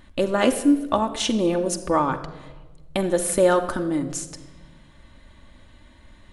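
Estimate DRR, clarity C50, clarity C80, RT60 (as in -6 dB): 5.0 dB, 12.0 dB, 14.0 dB, 1.3 s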